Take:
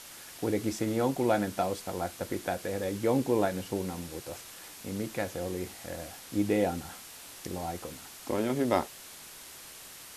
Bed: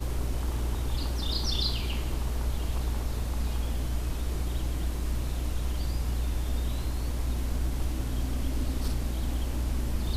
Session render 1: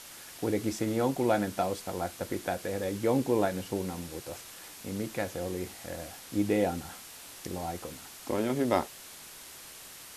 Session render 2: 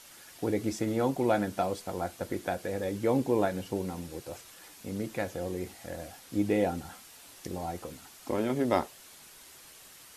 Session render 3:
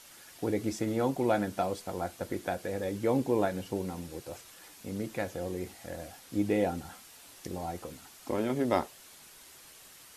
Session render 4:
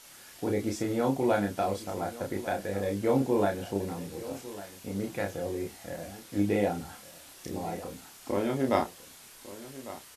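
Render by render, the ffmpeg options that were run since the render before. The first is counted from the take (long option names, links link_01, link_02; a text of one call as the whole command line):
ffmpeg -i in.wav -af anull out.wav
ffmpeg -i in.wav -af "afftdn=noise_reduction=6:noise_floor=-48" out.wav
ffmpeg -i in.wav -af "volume=-1dB" out.wav
ffmpeg -i in.wav -filter_complex "[0:a]asplit=2[link_01][link_02];[link_02]adelay=30,volume=-3dB[link_03];[link_01][link_03]amix=inputs=2:normalize=0,aecho=1:1:1151:0.158" out.wav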